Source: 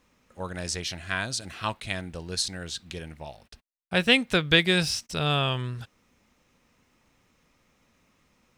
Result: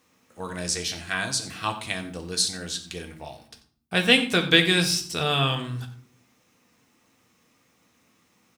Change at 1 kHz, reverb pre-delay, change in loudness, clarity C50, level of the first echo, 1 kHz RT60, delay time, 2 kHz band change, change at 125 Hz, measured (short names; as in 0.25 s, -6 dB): +2.0 dB, 3 ms, +2.5 dB, 11.0 dB, -15.5 dB, 0.50 s, 90 ms, +2.0 dB, +0.5 dB